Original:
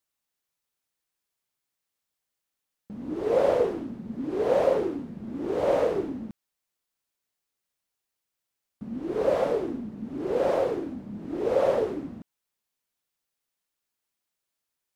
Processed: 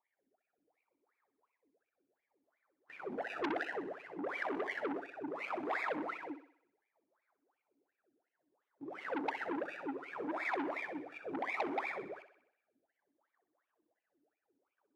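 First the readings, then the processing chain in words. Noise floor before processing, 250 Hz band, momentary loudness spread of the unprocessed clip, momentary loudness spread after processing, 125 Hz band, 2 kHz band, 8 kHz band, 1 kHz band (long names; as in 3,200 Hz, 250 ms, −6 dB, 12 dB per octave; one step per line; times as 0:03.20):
−85 dBFS, −11.0 dB, 15 LU, 11 LU, −21.0 dB, +3.5 dB, can't be measured, −5.5 dB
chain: high-pass filter 150 Hz 12 dB per octave
gate on every frequency bin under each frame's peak −10 dB weak
high-shelf EQ 4,100 Hz +12 dB
in parallel at 0 dB: compressor whose output falls as the input rises −41 dBFS, ratio −1
on the sum: sample-and-hold swept by an LFO 29×, swing 100% 0.65 Hz
LFO wah 2.8 Hz 270–2,400 Hz, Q 16
on a send: feedback echo with a high-pass in the loop 63 ms, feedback 57%, high-pass 340 Hz, level −11 dB
on the sum: saturating transformer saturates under 1,700 Hz
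level +10 dB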